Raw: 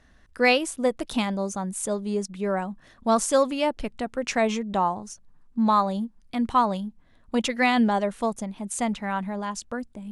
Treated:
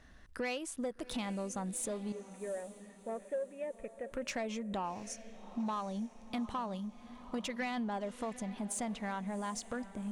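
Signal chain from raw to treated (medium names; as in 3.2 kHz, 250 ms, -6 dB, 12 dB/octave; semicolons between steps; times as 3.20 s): 2.12–4.12 s: cascade formant filter e; compression 4:1, threshold -34 dBFS, peak gain reduction 16 dB; saturation -28 dBFS, distortion -19 dB; echo that smears into a reverb 759 ms, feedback 44%, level -15 dB; trim -1 dB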